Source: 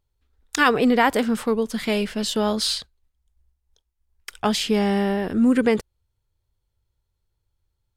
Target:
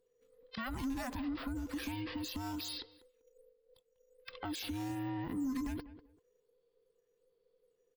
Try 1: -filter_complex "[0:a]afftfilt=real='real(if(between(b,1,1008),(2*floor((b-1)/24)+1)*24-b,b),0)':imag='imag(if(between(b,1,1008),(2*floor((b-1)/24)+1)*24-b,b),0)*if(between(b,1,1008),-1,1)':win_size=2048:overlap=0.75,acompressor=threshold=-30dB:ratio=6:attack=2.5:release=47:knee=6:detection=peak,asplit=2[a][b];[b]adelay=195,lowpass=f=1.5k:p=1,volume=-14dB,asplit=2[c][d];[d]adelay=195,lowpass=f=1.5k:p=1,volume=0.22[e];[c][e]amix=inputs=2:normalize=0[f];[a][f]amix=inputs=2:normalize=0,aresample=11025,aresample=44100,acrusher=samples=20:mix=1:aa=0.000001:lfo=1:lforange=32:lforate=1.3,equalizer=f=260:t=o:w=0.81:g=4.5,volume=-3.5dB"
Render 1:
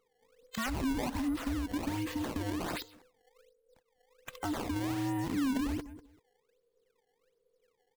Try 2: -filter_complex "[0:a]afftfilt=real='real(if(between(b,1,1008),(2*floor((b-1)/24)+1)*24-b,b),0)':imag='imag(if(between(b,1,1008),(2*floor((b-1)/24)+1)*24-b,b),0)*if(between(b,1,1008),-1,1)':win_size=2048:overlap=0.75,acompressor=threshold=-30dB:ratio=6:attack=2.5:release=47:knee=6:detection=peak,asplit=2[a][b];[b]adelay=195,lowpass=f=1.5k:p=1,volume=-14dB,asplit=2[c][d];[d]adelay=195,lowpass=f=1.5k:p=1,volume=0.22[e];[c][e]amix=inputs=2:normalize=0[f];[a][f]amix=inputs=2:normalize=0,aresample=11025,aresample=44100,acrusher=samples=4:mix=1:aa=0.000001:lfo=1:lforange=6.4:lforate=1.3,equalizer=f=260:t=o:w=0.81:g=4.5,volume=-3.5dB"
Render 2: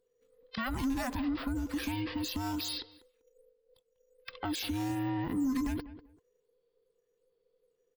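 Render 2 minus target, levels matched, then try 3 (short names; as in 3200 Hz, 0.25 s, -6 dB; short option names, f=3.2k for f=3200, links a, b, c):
compressor: peak gain reduction -5.5 dB
-filter_complex "[0:a]afftfilt=real='real(if(between(b,1,1008),(2*floor((b-1)/24)+1)*24-b,b),0)':imag='imag(if(between(b,1,1008),(2*floor((b-1)/24)+1)*24-b,b),0)*if(between(b,1,1008),-1,1)':win_size=2048:overlap=0.75,acompressor=threshold=-36.5dB:ratio=6:attack=2.5:release=47:knee=6:detection=peak,asplit=2[a][b];[b]adelay=195,lowpass=f=1.5k:p=1,volume=-14dB,asplit=2[c][d];[d]adelay=195,lowpass=f=1.5k:p=1,volume=0.22[e];[c][e]amix=inputs=2:normalize=0[f];[a][f]amix=inputs=2:normalize=0,aresample=11025,aresample=44100,acrusher=samples=4:mix=1:aa=0.000001:lfo=1:lforange=6.4:lforate=1.3,equalizer=f=260:t=o:w=0.81:g=4.5,volume=-3.5dB"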